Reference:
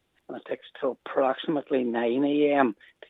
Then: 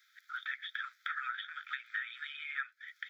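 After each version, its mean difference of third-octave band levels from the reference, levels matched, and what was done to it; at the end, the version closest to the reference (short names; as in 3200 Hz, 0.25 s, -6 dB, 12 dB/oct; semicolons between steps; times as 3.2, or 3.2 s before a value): 18.5 dB: Chebyshev high-pass 1300 Hz, order 8; compressor 12:1, threshold -47 dBFS, peak gain reduction 21 dB; fixed phaser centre 2800 Hz, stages 6; gain +13.5 dB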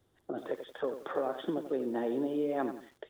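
7.5 dB: fifteen-band EQ 100 Hz +8 dB, 400 Hz +4 dB, 2500 Hz -12 dB; compressor 3:1, threshold -33 dBFS, peak gain reduction 13.5 dB; lo-fi delay 89 ms, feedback 35%, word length 9-bit, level -9.5 dB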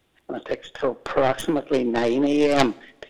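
5.5 dB: tracing distortion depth 0.41 ms; in parallel at -2 dB: compressor, threshold -30 dBFS, peak gain reduction 14.5 dB; on the sum: two-slope reverb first 0.59 s, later 2.8 s, from -22 dB, DRR 19 dB; gain +1.5 dB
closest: third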